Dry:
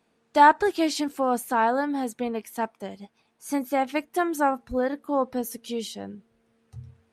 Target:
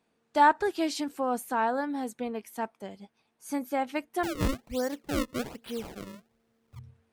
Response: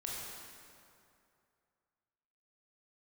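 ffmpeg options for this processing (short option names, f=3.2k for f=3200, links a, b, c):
-filter_complex "[0:a]asettb=1/sr,asplit=3[a][b][c];[a]atrim=end=4.234[d];[b]atrim=start=4.23:end=6.79,asetpts=PTS-STARTPTS,afade=t=in:d=0.004:c=qsin,afade=t=out:st=2.556:d=0.004:c=qsin,acrusher=samples=32:mix=1:aa=0.000001:lfo=1:lforange=51.2:lforate=1.2[e];[c]atrim=start=6.786[f];[d][e]acrossfade=d=0.004:c1=hsin:c2=qsin[g];[g][f]acrossfade=d=0.004:c1=qsin:c2=hsin,volume=-5dB"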